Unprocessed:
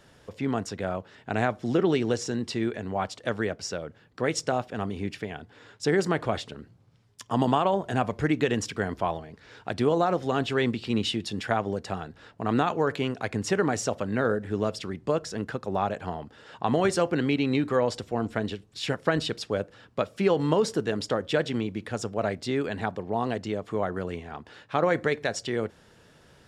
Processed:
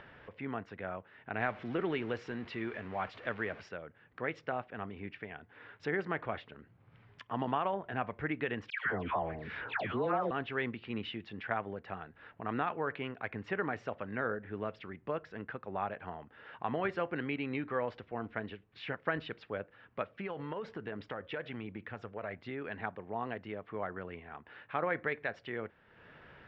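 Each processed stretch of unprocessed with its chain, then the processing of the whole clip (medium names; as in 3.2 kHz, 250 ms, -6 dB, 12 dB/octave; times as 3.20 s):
1.40–3.69 s: jump at every zero crossing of -37 dBFS + treble shelf 4.3 kHz +7 dB
8.70–10.31 s: phase dispersion lows, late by 149 ms, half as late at 1.3 kHz + level flattener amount 50%
20.09–22.62 s: phaser 1.2 Hz, delay 2.3 ms, feedback 28% + compression, threshold -24 dBFS
whole clip: low-pass 2.3 kHz 24 dB/octave; tilt shelf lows -6.5 dB, about 1.2 kHz; upward compressor, threshold -38 dBFS; trim -6.5 dB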